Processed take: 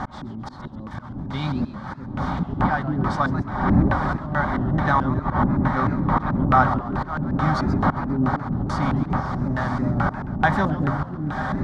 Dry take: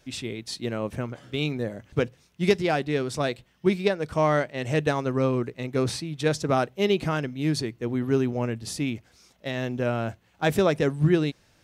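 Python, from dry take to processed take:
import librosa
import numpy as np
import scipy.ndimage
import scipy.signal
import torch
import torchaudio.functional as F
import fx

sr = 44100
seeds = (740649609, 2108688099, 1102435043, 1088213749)

y = x + 0.5 * 10.0 ** (-36.0 / 20.0) * np.sign(x)
y = fx.dmg_wind(y, sr, seeds[0], corner_hz=410.0, level_db=-21.0)
y = fx.low_shelf(y, sr, hz=200.0, db=-3.0)
y = fx.fixed_phaser(y, sr, hz=1100.0, stages=4)
y = fx.notch_comb(y, sr, f0_hz=340.0)
y = fx.echo_diffused(y, sr, ms=1013, feedback_pct=55, wet_db=-7)
y = fx.auto_swell(y, sr, attack_ms=354.0)
y = fx.peak_eq(y, sr, hz=1100.0, db=7.0, octaves=1.3)
y = fx.filter_lfo_lowpass(y, sr, shape='square', hz=2.3, low_hz=340.0, high_hz=2800.0, q=1.6)
y = fx.echo_warbled(y, sr, ms=135, feedback_pct=46, rate_hz=2.8, cents=212, wet_db=-13.5)
y = F.gain(torch.from_numpy(y), 5.0).numpy()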